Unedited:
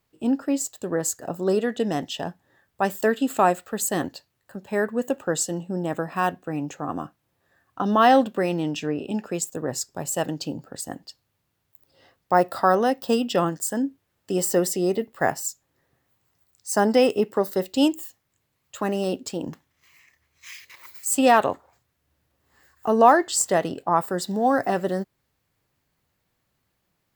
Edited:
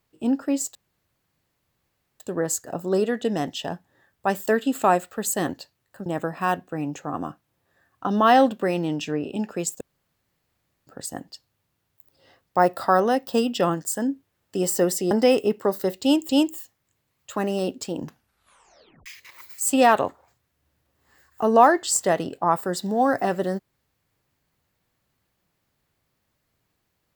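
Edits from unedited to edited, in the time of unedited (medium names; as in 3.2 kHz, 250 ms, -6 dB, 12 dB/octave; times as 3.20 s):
0.75 s: insert room tone 1.45 s
4.61–5.81 s: delete
9.56–10.62 s: room tone
14.86–16.83 s: delete
17.74–18.01 s: loop, 2 plays
19.49 s: tape stop 1.02 s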